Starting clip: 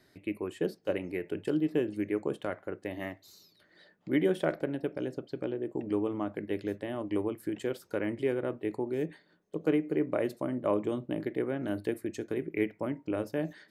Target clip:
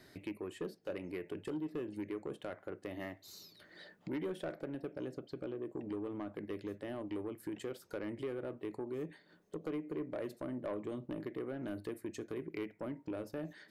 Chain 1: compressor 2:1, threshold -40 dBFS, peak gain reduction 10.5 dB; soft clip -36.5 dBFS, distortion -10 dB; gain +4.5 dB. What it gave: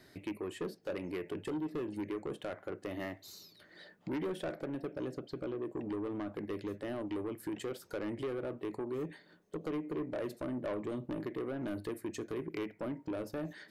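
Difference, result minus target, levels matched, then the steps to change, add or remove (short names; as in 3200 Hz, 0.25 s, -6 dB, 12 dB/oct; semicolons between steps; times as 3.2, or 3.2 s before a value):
compressor: peak gain reduction -4.5 dB
change: compressor 2:1, threshold -49.5 dBFS, peak gain reduction 15 dB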